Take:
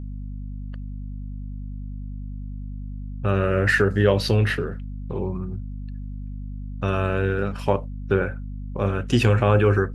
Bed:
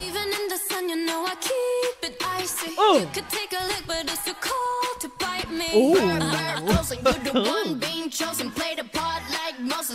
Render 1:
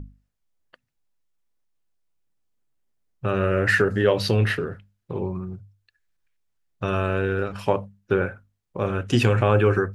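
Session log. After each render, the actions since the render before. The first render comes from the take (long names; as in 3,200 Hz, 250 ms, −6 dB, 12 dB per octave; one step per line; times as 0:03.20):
mains-hum notches 50/100/150/200/250 Hz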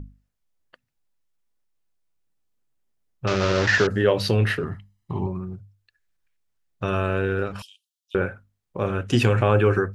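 0:03.27–0:03.87: linear delta modulator 32 kbit/s, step −19 dBFS
0:04.63–0:05.27: comb filter 1 ms, depth 82%
0:07.62–0:08.15: Butterworth high-pass 3,000 Hz 72 dB per octave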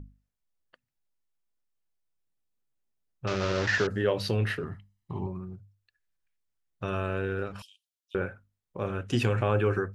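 level −7 dB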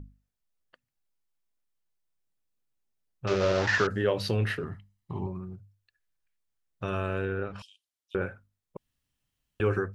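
0:03.29–0:03.93: parametric band 380 Hz → 1,500 Hz +9 dB 0.5 octaves
0:07.24–0:08.21: treble cut that deepens with the level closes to 2,600 Hz, closed at −27.5 dBFS
0:08.77–0:09.60: fill with room tone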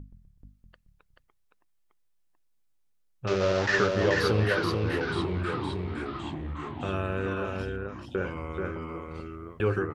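on a send: single-tap delay 433 ms −3.5 dB
on the sum: delay with pitch and tempo change per echo 125 ms, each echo −3 semitones, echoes 3, each echo −6 dB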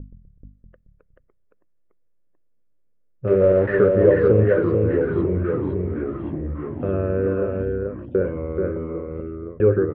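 low-pass filter 1,900 Hz 24 dB per octave
low shelf with overshoot 660 Hz +7 dB, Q 3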